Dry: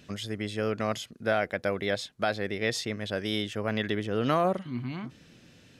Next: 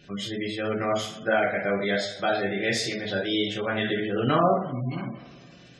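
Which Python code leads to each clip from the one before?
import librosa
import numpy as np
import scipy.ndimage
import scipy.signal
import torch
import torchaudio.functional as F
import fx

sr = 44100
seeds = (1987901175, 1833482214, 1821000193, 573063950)

y = fx.rev_double_slope(x, sr, seeds[0], early_s=0.51, late_s=2.3, knee_db=-18, drr_db=-5.0)
y = fx.spec_gate(y, sr, threshold_db=-25, keep='strong')
y = y * librosa.db_to_amplitude(-1.5)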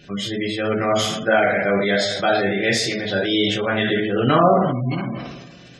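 y = fx.sustainer(x, sr, db_per_s=41.0)
y = y * librosa.db_to_amplitude(6.0)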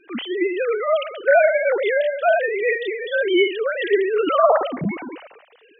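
y = fx.sine_speech(x, sr)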